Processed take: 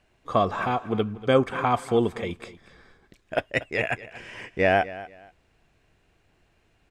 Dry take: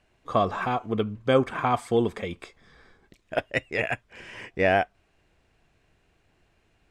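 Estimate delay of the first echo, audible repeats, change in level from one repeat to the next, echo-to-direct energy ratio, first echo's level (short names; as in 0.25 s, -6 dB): 0.239 s, 2, -12.5 dB, -17.0 dB, -17.0 dB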